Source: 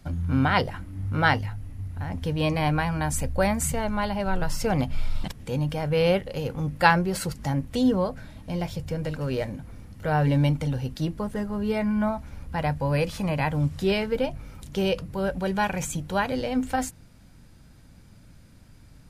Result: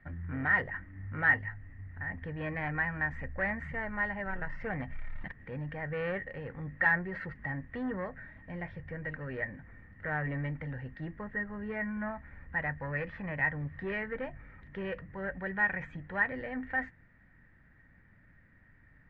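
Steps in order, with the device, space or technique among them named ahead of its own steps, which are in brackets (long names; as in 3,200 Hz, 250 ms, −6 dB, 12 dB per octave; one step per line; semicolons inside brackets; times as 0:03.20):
overdriven synthesiser ladder filter (soft clipping −19 dBFS, distortion −14 dB; transistor ladder low-pass 1,900 Hz, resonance 90%)
level +2 dB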